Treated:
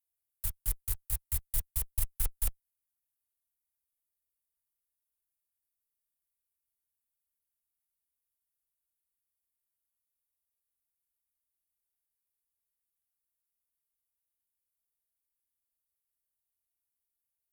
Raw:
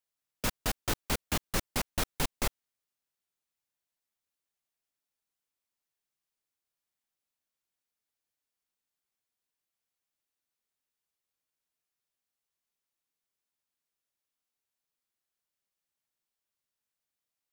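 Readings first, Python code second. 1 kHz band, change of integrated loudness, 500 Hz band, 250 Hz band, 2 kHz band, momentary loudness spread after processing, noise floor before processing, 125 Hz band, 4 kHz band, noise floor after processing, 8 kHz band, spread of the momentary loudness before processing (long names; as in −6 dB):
−19.5 dB, −1.0 dB, −21.5 dB, −21.5 dB, −17.5 dB, 3 LU, below −85 dBFS, −1.5 dB, −15.0 dB, below −85 dBFS, −1.0 dB, 3 LU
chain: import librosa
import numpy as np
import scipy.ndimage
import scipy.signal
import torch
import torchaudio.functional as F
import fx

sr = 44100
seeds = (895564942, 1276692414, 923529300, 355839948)

y = scipy.signal.sosfilt(scipy.signal.cheby2(4, 60, [260.0, 3400.0], 'bandstop', fs=sr, output='sos'), x)
y = fx.quant_float(y, sr, bits=2)
y = fx.cheby_harmonics(y, sr, harmonics=(6,), levels_db=(-22,), full_scale_db=-20.5)
y = y * 10.0 ** (4.5 / 20.0)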